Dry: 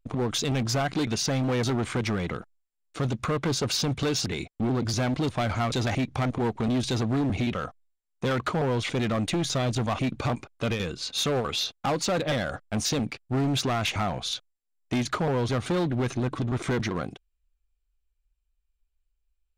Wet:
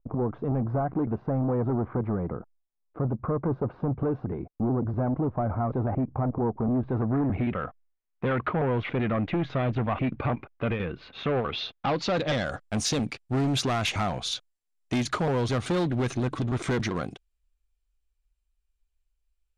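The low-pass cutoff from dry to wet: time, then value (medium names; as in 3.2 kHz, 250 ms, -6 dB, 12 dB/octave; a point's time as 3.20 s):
low-pass 24 dB/octave
6.74 s 1.1 kHz
7.65 s 2.5 kHz
11.17 s 2.5 kHz
12.04 s 4.7 kHz
12.74 s 12 kHz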